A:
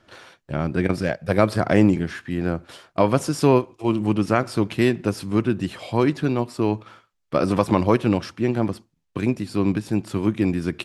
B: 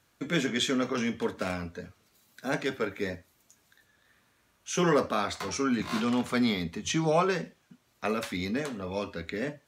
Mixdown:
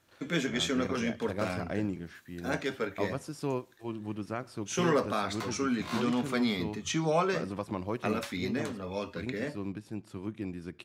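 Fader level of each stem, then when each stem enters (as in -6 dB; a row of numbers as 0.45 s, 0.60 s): -16.5 dB, -2.5 dB; 0.00 s, 0.00 s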